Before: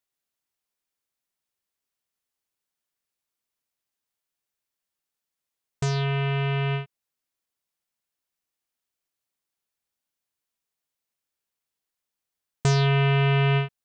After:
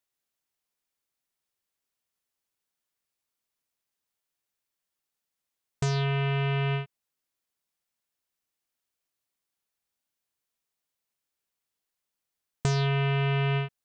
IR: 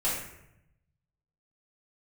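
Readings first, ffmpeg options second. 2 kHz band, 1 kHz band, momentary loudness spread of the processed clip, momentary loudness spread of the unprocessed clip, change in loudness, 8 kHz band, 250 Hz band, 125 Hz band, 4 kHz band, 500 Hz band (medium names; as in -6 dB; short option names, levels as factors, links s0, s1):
-4.0 dB, -4.0 dB, 7 LU, 8 LU, -4.0 dB, -4.0 dB, no reading, -4.0 dB, -4.0 dB, -4.0 dB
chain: -af "acompressor=threshold=0.0631:ratio=6"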